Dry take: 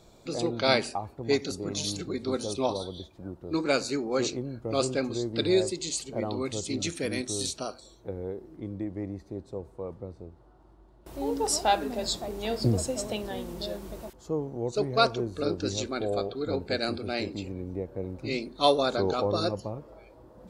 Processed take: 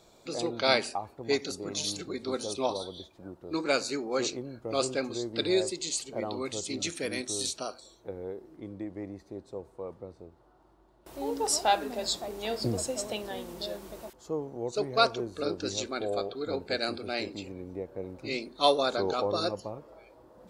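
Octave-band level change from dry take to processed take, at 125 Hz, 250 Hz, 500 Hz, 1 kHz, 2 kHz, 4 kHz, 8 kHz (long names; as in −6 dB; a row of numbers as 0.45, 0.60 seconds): −8.0, −4.0, −2.0, −1.0, 0.0, 0.0, 0.0 decibels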